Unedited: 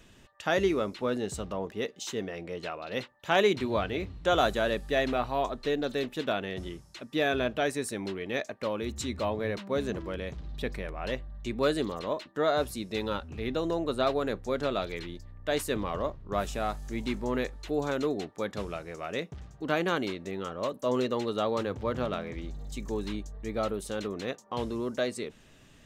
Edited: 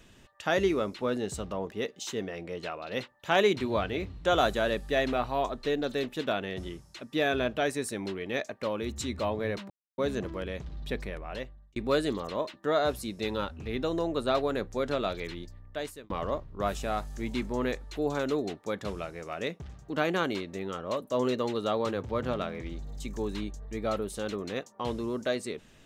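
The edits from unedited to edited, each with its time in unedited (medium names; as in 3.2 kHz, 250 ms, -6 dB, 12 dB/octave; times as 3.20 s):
9.70 s: insert silence 0.28 s
10.55–11.48 s: fade out equal-power
15.20–15.82 s: fade out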